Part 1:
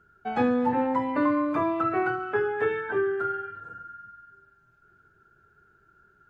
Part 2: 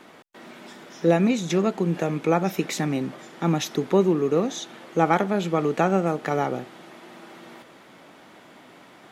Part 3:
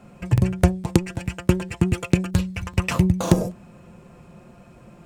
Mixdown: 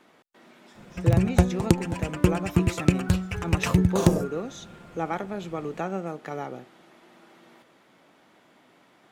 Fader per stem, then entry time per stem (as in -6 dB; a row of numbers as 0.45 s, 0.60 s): -15.0 dB, -9.5 dB, -2.0 dB; 1.00 s, 0.00 s, 0.75 s